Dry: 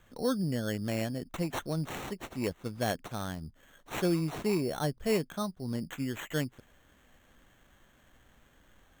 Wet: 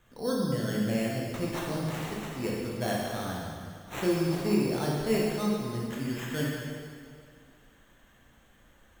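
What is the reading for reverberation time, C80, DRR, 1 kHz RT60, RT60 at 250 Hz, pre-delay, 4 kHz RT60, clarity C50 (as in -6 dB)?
2.1 s, 0.5 dB, -4.5 dB, 2.1 s, 2.2 s, 7 ms, 2.0 s, -1.5 dB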